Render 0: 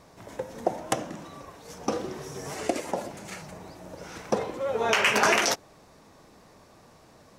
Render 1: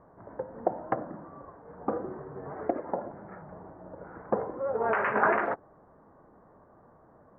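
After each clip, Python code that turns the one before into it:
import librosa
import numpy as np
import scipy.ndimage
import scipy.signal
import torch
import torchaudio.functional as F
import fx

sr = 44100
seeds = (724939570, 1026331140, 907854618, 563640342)

y = fx.wiener(x, sr, points=15)
y = scipy.signal.sosfilt(scipy.signal.butter(6, 1700.0, 'lowpass', fs=sr, output='sos'), y)
y = fx.low_shelf(y, sr, hz=340.0, db=-4.5)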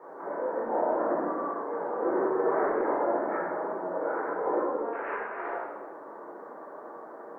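y = scipy.signal.sosfilt(scipy.signal.butter(4, 320.0, 'highpass', fs=sr, output='sos'), x)
y = fx.over_compress(y, sr, threshold_db=-39.0, ratio=-1.0)
y = fx.room_shoebox(y, sr, seeds[0], volume_m3=830.0, walls='mixed', distance_m=4.3)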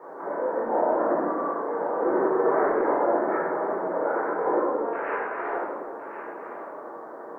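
y = x + 10.0 ** (-11.0 / 20.0) * np.pad(x, (int(1065 * sr / 1000.0), 0))[:len(x)]
y = F.gain(torch.from_numpy(y), 4.0).numpy()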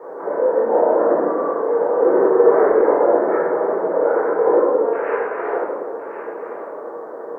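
y = fx.peak_eq(x, sr, hz=470.0, db=10.0, octaves=0.54)
y = F.gain(torch.from_numpy(y), 3.0).numpy()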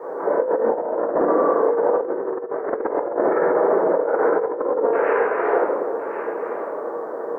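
y = fx.over_compress(x, sr, threshold_db=-19.0, ratio=-0.5)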